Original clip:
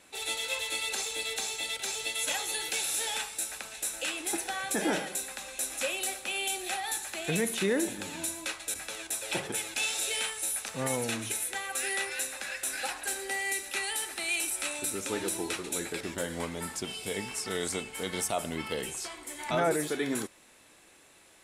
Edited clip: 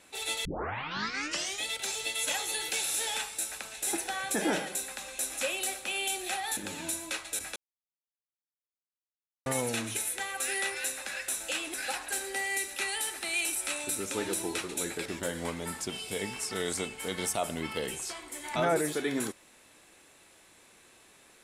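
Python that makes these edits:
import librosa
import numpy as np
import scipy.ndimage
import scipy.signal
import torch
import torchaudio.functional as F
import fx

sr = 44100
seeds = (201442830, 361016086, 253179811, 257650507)

y = fx.edit(x, sr, fx.tape_start(start_s=0.45, length_s=1.21),
    fx.move(start_s=3.87, length_s=0.4, to_s=12.69),
    fx.cut(start_s=6.97, length_s=0.95),
    fx.silence(start_s=8.91, length_s=1.9), tone=tone)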